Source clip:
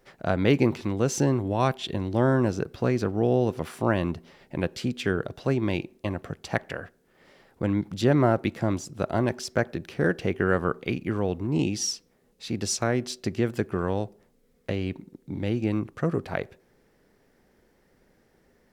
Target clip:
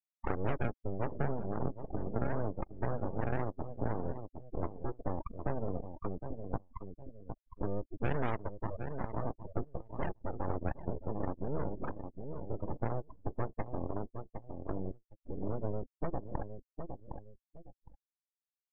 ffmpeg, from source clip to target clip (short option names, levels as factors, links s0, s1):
-filter_complex "[0:a]asettb=1/sr,asplit=3[s0][s1][s2];[s0]atrim=end=9.964[s3];[s1]atrim=start=9.96:end=10.56,asetpts=PTS-STARTPTS,afade=t=in:d=0.004:c=qsin,afade=t=out:st=0.596:d=0.004:c=qsin,equalizer=f=250:t=o:w=1:g=-9,equalizer=f=1000:t=o:w=1:g=9,equalizer=f=2000:t=o:w=1:g=-7[s4];[s2]atrim=start=10.556[s5];[s3][s4]acrossfade=d=0.004:c1=hsin:c2=qsin[s6];[s6][s5]acrossfade=d=0.004:c1=qsin:c2=hsin,acrusher=samples=36:mix=1:aa=0.000001:lfo=1:lforange=36:lforate=1.9,asettb=1/sr,asplit=3[s7][s8][s9];[s7]atrim=end=8.444[s10];[s8]atrim=start=8.44:end=9.25,asetpts=PTS-STARTPTS,afade=t=in:d=0.004:c=qsin,afade=t=out:st=0.806:d=0.004:c=qsin,acrossover=split=280|3000[s11][s12][s13];[s11]acompressor=threshold=0.00224:ratio=1.5[s14];[s14][s12][s13]amix=inputs=3:normalize=0[s15];[s9]atrim=start=9.246[s16];[s10][s15]acrossfade=d=0.004:c1=hsin:c2=qsin[s17];[s17][s16]acrossfade=d=0.004:c1=qsin:c2=hsin,asettb=1/sr,asplit=3[s18][s19][s20];[s18]atrim=end=13.444[s21];[s19]atrim=start=13.44:end=13.94,asetpts=PTS-STARTPTS,afade=t=in:d=0.004:c=qsin,afade=t=out:st=0.496:d=0.004:c=qsin,equalizer=f=290:w=0.86:g=-2.5[s22];[s20]atrim=start=13.936[s23];[s21][s22]acrossfade=d=0.004:c1=hsin:c2=qsin[s24];[s24][s23]acrossfade=d=0.004:c1=qsin:c2=hsin,afftfilt=real='re*gte(hypot(re,im),0.126)':imag='im*gte(hypot(re,im),0.126)':win_size=1024:overlap=0.75,asplit=2[s25][s26];[s26]adelay=761,lowpass=f=2400:p=1,volume=0.224,asplit=2[s27][s28];[s28]adelay=761,lowpass=f=2400:p=1,volume=0.2[s29];[s25][s27][s29]amix=inputs=3:normalize=0,acompressor=threshold=0.00631:ratio=2,aeval=exprs='abs(val(0))':c=same,afftdn=nr=24:nf=-50,volume=1.78"